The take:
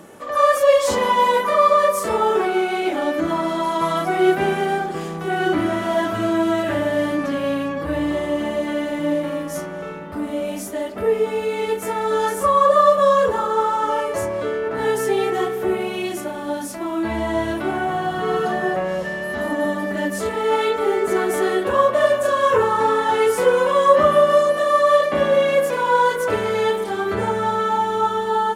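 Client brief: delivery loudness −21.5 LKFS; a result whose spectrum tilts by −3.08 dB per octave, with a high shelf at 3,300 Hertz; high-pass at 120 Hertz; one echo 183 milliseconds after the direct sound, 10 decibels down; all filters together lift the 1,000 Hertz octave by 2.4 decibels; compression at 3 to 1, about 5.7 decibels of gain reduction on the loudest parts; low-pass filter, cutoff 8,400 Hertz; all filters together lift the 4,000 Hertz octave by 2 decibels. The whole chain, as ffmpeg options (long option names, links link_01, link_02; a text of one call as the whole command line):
ffmpeg -i in.wav -af "highpass=120,lowpass=8400,equalizer=frequency=1000:width_type=o:gain=3,highshelf=frequency=3300:gain=-3.5,equalizer=frequency=4000:width_type=o:gain=5,acompressor=threshold=-16dB:ratio=3,aecho=1:1:183:0.316,volume=-1dB" out.wav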